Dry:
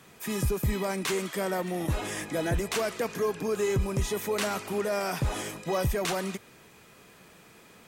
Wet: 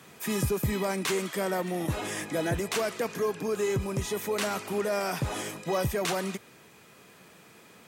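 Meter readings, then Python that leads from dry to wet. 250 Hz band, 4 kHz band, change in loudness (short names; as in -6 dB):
+0.5 dB, +0.5 dB, 0.0 dB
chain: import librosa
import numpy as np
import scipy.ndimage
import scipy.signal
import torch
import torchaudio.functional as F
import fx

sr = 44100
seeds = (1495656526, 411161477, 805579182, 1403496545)

y = scipy.signal.sosfilt(scipy.signal.butter(2, 92.0, 'highpass', fs=sr, output='sos'), x)
y = fx.rider(y, sr, range_db=10, speed_s=2.0)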